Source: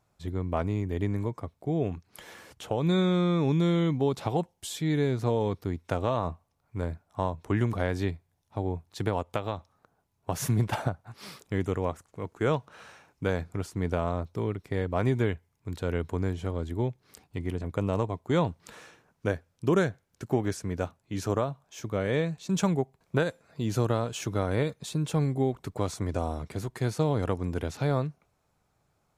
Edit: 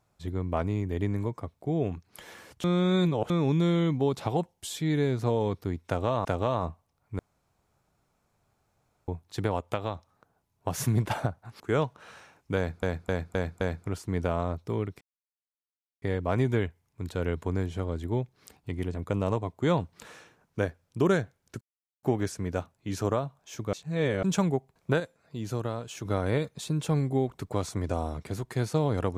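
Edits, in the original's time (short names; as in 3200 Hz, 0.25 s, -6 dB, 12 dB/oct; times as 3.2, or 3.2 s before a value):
2.64–3.3 reverse
5.87–6.25 loop, 2 plays
6.81–8.7 room tone
11.22–12.32 cut
13.29–13.55 loop, 5 plays
14.69 insert silence 1.01 s
20.28 insert silence 0.42 s
21.98–22.48 reverse
23.25–24.3 gain -5.5 dB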